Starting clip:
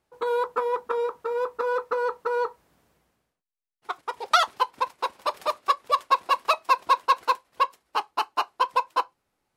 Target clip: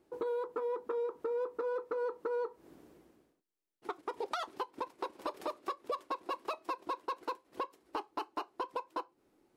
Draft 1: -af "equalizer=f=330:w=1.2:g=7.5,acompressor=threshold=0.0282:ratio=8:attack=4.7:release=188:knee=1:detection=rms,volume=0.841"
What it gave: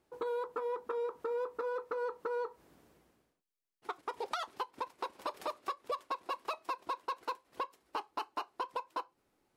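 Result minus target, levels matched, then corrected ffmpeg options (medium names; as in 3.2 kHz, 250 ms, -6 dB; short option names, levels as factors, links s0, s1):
250 Hz band -5.5 dB
-af "equalizer=f=330:w=1.2:g=18,acompressor=threshold=0.0282:ratio=8:attack=4.7:release=188:knee=1:detection=rms,volume=0.841"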